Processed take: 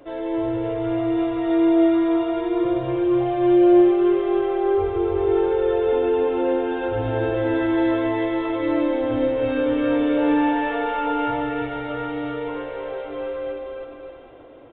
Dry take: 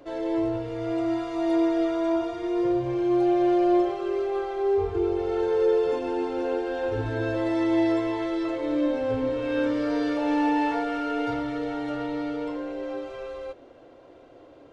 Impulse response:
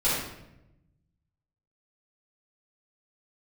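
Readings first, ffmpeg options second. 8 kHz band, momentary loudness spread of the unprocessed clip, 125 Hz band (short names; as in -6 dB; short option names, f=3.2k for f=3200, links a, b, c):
n/a, 8 LU, +4.0 dB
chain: -filter_complex "[0:a]asplit=2[a][b];[b]aecho=0:1:320|576|780.8|944.6|1076:0.631|0.398|0.251|0.158|0.1[c];[a][c]amix=inputs=2:normalize=0,aresample=8000,aresample=44100,asplit=2[d][e];[e]aecho=0:1:99:0.266[f];[d][f]amix=inputs=2:normalize=0,volume=2dB"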